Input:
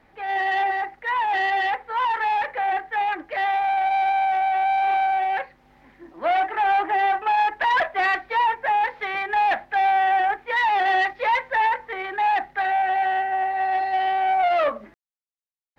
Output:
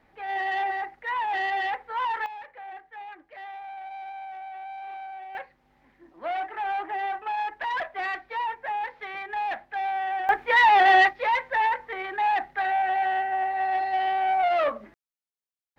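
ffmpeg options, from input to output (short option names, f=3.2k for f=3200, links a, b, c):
-af "asetnsamples=n=441:p=0,asendcmd='2.26 volume volume -17.5dB;5.35 volume volume -9dB;10.29 volume volume 3.5dB;11.09 volume volume -3dB',volume=-5dB"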